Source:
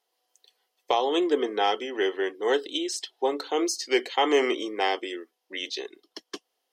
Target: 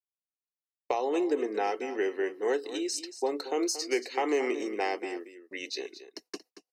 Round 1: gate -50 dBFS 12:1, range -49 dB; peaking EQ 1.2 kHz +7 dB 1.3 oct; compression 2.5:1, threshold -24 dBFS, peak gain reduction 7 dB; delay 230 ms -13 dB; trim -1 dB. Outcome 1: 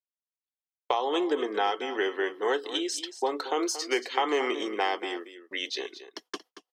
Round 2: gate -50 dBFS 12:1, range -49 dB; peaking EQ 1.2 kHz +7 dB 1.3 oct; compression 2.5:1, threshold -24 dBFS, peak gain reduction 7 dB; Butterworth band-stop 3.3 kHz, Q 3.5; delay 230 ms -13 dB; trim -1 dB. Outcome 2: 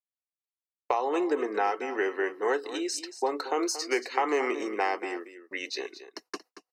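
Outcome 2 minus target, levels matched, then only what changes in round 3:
1 kHz band +3.0 dB
change: peaking EQ 1.2 kHz -5 dB 1.3 oct

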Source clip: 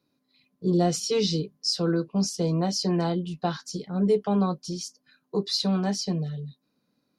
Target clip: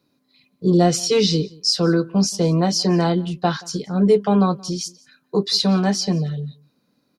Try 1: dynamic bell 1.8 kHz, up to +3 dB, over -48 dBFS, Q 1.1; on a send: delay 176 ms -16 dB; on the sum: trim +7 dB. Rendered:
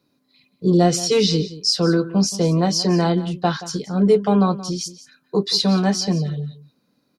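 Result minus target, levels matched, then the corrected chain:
echo-to-direct +8.5 dB
dynamic bell 1.8 kHz, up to +3 dB, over -48 dBFS, Q 1.1; on a send: delay 176 ms -24.5 dB; on the sum: trim +7 dB

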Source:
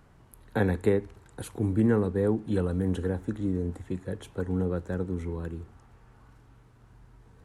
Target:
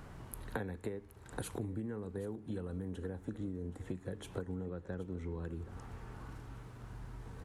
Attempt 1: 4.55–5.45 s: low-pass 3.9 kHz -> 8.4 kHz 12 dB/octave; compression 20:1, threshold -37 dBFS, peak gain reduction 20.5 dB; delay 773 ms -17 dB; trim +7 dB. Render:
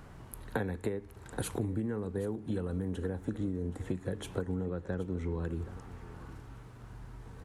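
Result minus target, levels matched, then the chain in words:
compression: peak gain reduction -6 dB
4.55–5.45 s: low-pass 3.9 kHz -> 8.4 kHz 12 dB/octave; compression 20:1, threshold -43.5 dBFS, peak gain reduction 26.5 dB; delay 773 ms -17 dB; trim +7 dB

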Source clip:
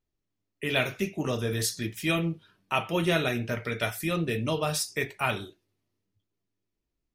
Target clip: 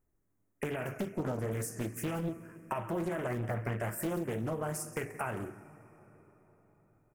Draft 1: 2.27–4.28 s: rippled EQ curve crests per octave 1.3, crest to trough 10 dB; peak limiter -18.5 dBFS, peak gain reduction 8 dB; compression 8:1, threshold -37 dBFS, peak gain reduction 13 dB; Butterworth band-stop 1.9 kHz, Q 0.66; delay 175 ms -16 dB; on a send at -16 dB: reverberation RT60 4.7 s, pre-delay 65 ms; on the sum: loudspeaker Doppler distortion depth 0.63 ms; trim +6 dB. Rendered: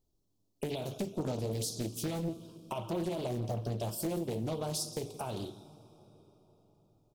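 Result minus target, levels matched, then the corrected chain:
2 kHz band -10.5 dB
2.27–4.28 s: rippled EQ curve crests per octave 1.3, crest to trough 10 dB; peak limiter -18.5 dBFS, peak gain reduction 8 dB; compression 8:1, threshold -37 dBFS, peak gain reduction 13 dB; Butterworth band-stop 3.8 kHz, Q 0.66; delay 175 ms -16 dB; on a send at -16 dB: reverberation RT60 4.7 s, pre-delay 65 ms; on the sum: loudspeaker Doppler distortion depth 0.63 ms; trim +6 dB

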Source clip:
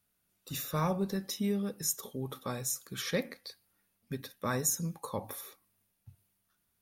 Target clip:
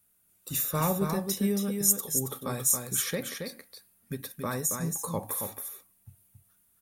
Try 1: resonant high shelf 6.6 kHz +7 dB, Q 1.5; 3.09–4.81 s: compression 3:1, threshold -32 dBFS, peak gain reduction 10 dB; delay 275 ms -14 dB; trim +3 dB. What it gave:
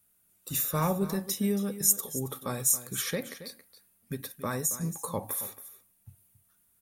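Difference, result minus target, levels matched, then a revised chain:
echo-to-direct -8.5 dB
resonant high shelf 6.6 kHz +7 dB, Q 1.5; 3.09–4.81 s: compression 3:1, threshold -32 dBFS, peak gain reduction 10 dB; delay 275 ms -5.5 dB; trim +3 dB

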